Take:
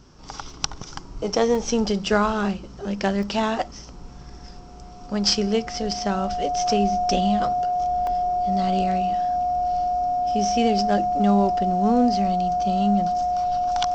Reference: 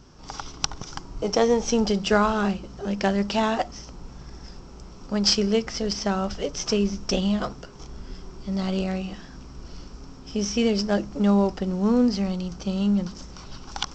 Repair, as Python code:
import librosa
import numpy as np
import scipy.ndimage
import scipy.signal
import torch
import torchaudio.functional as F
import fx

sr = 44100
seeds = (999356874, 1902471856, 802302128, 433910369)

y = fx.notch(x, sr, hz=720.0, q=30.0)
y = fx.fix_interpolate(y, sr, at_s=(0.5, 1.55, 3.23, 8.07), length_ms=1.6)